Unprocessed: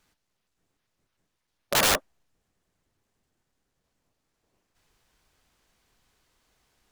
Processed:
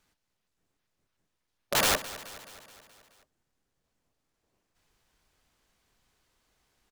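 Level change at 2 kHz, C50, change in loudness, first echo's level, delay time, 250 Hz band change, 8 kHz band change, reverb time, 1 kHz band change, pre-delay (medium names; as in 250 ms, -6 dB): -3.0 dB, no reverb, -3.5 dB, -16.0 dB, 213 ms, -3.0 dB, -3.0 dB, no reverb, -3.0 dB, no reverb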